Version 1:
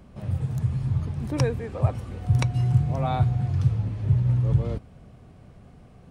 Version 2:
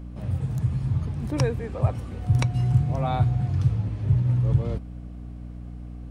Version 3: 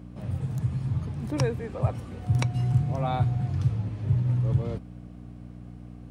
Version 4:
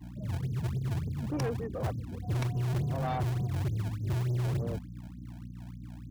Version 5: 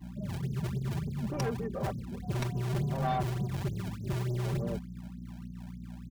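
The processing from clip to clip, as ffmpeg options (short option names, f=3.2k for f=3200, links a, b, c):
-af "aeval=exprs='val(0)+0.0158*(sin(2*PI*60*n/s)+sin(2*PI*2*60*n/s)/2+sin(2*PI*3*60*n/s)/3+sin(2*PI*4*60*n/s)/4+sin(2*PI*5*60*n/s)/5)':c=same"
-af "highpass=91,volume=-1.5dB"
-filter_complex "[0:a]afftfilt=real='re*gte(hypot(re,im),0.0282)':imag='im*gte(hypot(re,im),0.0282)':win_size=1024:overlap=0.75,acrossover=split=130[a][b];[a]acrusher=samples=32:mix=1:aa=0.000001:lfo=1:lforange=51.2:lforate=3.4[c];[c][b]amix=inputs=2:normalize=0,asoftclip=type=tanh:threshold=-27dB"
-af "aecho=1:1:5.1:0.63"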